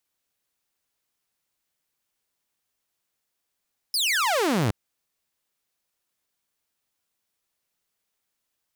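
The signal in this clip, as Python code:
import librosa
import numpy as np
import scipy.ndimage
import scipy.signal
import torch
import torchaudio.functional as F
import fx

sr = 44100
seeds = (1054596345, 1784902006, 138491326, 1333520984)

y = fx.laser_zap(sr, level_db=-18.0, start_hz=5300.0, end_hz=93.0, length_s=0.77, wave='saw')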